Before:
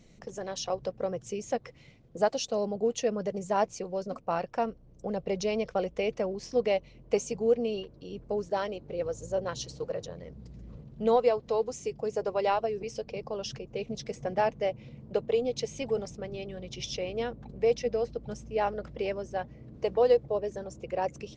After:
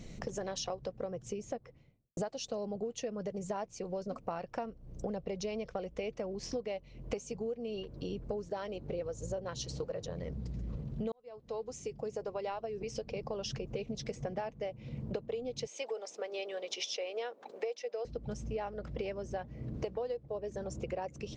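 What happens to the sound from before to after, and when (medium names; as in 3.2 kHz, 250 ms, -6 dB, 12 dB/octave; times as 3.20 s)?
0.87–2.17 s: studio fade out
11.12–13.51 s: fade in
15.67–18.05 s: high-pass 450 Hz 24 dB/octave
whole clip: bass shelf 140 Hz +5 dB; compression 10:1, threshold -42 dBFS; trim +7 dB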